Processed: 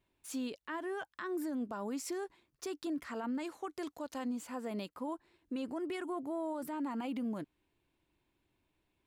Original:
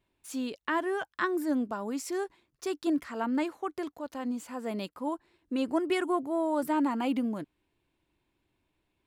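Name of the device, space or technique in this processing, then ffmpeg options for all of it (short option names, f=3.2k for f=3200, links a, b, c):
stacked limiters: -filter_complex "[0:a]asettb=1/sr,asplit=3[a][b][c];[a]atrim=end=3.394[d];[b]atrim=start=3.39:end=4.25,asetpts=PTS-STARTPTS,afade=t=in:d=0.004:c=qsin,afade=t=out:st=0.856:d=0.004:c=qsin,equalizer=f=6.9k:w=0.53:g=7[e];[c]atrim=start=4.246[f];[d][e]acrossfade=d=0.004:c1=hsin:c2=qsin[g];[g][f]acrossfade=d=0.004:c1=qsin:c2=hsin,alimiter=limit=-21.5dB:level=0:latency=1:release=149,alimiter=level_in=1.5dB:limit=-24dB:level=0:latency=1:release=19,volume=-1.5dB,alimiter=level_in=5dB:limit=-24dB:level=0:latency=1:release=135,volume=-5dB,volume=-2dB"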